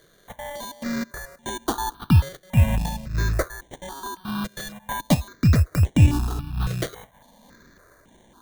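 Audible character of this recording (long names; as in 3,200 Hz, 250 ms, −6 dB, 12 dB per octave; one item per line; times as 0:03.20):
aliases and images of a low sample rate 2,600 Hz, jitter 0%
sample-and-hold tremolo
notches that jump at a steady rate 3.6 Hz 240–4,700 Hz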